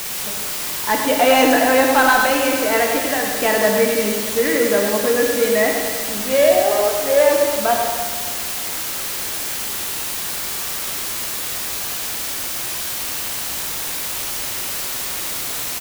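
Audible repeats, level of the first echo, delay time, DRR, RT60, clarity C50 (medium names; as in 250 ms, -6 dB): 1, -7.0 dB, 104 ms, 0.5 dB, 1.8 s, 2.0 dB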